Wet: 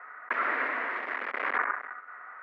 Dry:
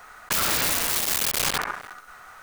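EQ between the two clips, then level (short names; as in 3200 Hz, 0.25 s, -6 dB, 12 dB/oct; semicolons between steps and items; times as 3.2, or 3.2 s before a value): Chebyshev band-pass 240–2000 Hz, order 4; tilt +3.5 dB/oct; notch 830 Hz, Q 12; 0.0 dB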